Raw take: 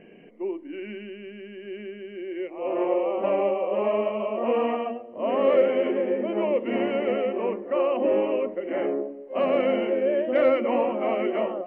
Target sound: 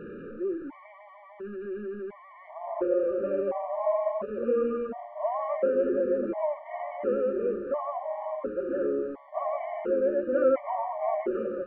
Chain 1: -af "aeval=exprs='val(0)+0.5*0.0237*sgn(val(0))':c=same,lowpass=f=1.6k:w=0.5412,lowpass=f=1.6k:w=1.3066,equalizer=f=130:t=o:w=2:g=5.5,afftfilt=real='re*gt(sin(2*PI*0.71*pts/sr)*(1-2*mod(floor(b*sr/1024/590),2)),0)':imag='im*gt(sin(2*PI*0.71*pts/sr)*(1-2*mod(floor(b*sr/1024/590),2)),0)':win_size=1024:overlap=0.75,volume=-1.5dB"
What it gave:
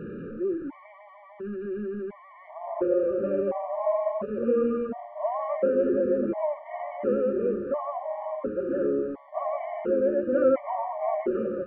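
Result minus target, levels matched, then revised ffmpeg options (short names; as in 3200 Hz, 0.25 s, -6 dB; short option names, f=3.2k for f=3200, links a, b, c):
125 Hz band +5.5 dB
-af "aeval=exprs='val(0)+0.5*0.0237*sgn(val(0))':c=same,lowpass=f=1.6k:w=0.5412,lowpass=f=1.6k:w=1.3066,equalizer=f=130:t=o:w=2:g=-4,afftfilt=real='re*gt(sin(2*PI*0.71*pts/sr)*(1-2*mod(floor(b*sr/1024/590),2)),0)':imag='im*gt(sin(2*PI*0.71*pts/sr)*(1-2*mod(floor(b*sr/1024/590),2)),0)':win_size=1024:overlap=0.75,volume=-1.5dB"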